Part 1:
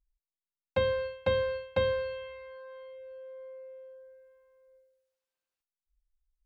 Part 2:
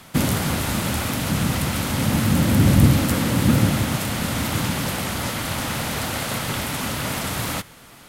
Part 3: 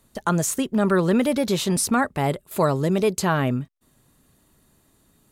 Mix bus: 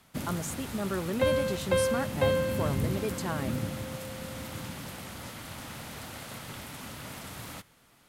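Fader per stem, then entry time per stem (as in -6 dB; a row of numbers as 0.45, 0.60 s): +1.5, -16.0, -13.0 dB; 0.45, 0.00, 0.00 s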